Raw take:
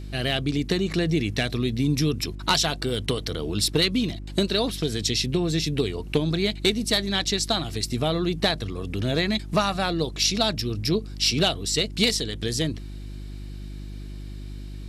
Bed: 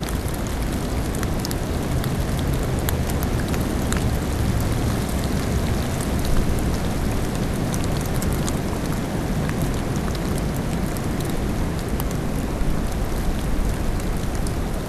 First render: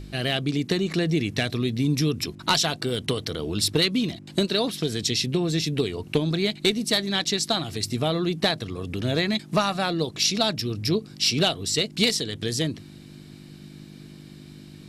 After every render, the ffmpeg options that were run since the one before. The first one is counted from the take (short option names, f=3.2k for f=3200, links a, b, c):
-af "bandreject=f=50:t=h:w=4,bandreject=f=100:t=h:w=4"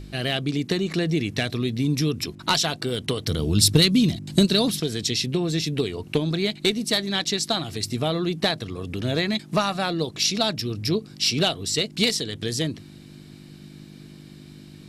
-filter_complex "[0:a]asettb=1/sr,asplit=3[a][b][c];[a]atrim=end=3.274[d];[b]atrim=start=3.27:end=4.8,asetpts=PTS-STARTPTS,afade=t=in:d=0.004:c=qsin,afade=t=out:st=1.526:d=0.004:c=qsin,bass=f=250:g=11,treble=f=4k:g=8[e];[c]atrim=start=4.796[f];[d][e]acrossfade=d=0.004:c1=hsin:c2=qsin[g];[g][f]acrossfade=d=0.004:c1=qsin:c2=hsin"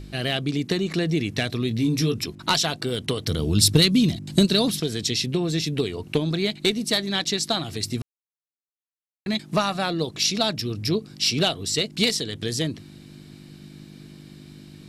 -filter_complex "[0:a]asettb=1/sr,asplit=3[a][b][c];[a]atrim=end=1.694[d];[b]atrim=start=1.69:end=2.2,asetpts=PTS-STARTPTS,afade=t=in:d=0.004:c=qsin,afade=t=out:st=0.506:d=0.004:c=qsin,asplit=2[e][f];[f]adelay=18,volume=-6dB[g];[e][g]amix=inputs=2:normalize=0,atrim=end_sample=22491[h];[c]atrim=start=2.196[i];[d][h]acrossfade=d=0.004:c1=hsin:c2=qsin[j];[j][i]acrossfade=d=0.004:c1=qsin:c2=hsin,asplit=3[k][l][m];[k]atrim=end=8.02,asetpts=PTS-STARTPTS,afade=t=out:st=8.016:d=0.004:c=hsin[n];[l]atrim=start=8.02:end=9.26,asetpts=PTS-STARTPTS,volume=0[o];[m]atrim=start=9.26,asetpts=PTS-STARTPTS,afade=t=in:d=0.004:c=hsin[p];[n][o][p]concat=n=3:v=0:a=1"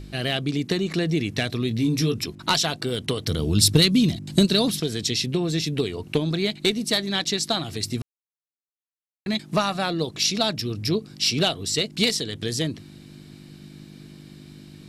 -af anull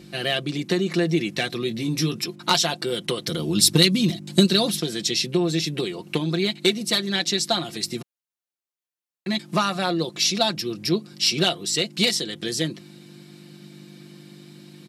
-af "highpass=190,aecho=1:1:5.7:0.65"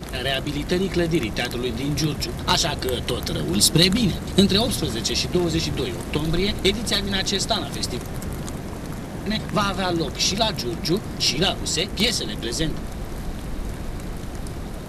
-filter_complex "[1:a]volume=-7.5dB[a];[0:a][a]amix=inputs=2:normalize=0"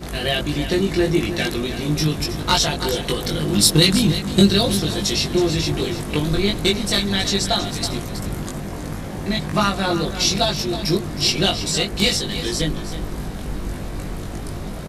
-filter_complex "[0:a]asplit=2[a][b];[b]adelay=20,volume=-2dB[c];[a][c]amix=inputs=2:normalize=0,asplit=2[d][e];[e]aecho=0:1:321:0.266[f];[d][f]amix=inputs=2:normalize=0"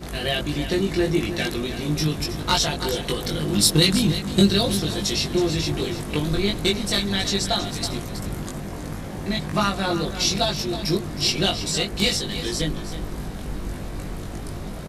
-af "volume=-3dB"